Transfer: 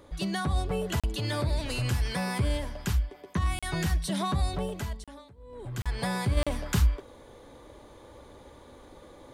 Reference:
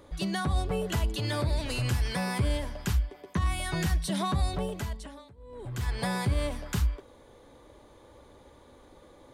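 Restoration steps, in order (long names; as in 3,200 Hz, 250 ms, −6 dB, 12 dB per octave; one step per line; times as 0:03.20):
repair the gap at 0:01.00/0:03.59/0:05.04/0:05.82/0:06.43, 36 ms
level 0 dB, from 0:06.37 −4 dB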